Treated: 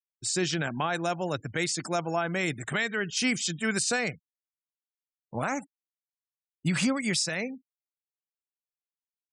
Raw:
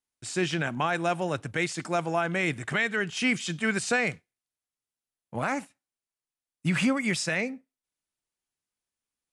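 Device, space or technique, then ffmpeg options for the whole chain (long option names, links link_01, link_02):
over-bright horn tweeter: -af "afftfilt=real='re*gte(hypot(re,im),0.00794)':imag='im*gte(hypot(re,im),0.00794)':win_size=1024:overlap=0.75,highshelf=frequency=3500:width_type=q:width=1.5:gain=6.5,alimiter=limit=-17dB:level=0:latency=1:release=469"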